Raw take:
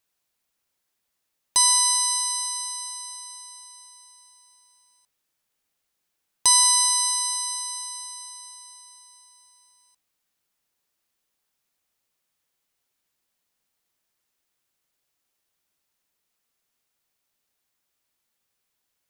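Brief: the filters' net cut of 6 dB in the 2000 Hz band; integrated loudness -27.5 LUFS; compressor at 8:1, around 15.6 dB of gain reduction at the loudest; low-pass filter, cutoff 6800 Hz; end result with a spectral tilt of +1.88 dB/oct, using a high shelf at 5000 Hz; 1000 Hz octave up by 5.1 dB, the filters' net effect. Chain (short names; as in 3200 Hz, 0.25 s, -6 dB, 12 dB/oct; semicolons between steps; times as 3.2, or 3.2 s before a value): LPF 6800 Hz; bell 1000 Hz +6.5 dB; bell 2000 Hz -6.5 dB; high shelf 5000 Hz -5.5 dB; compressor 8:1, threshold -34 dBFS; gain +10 dB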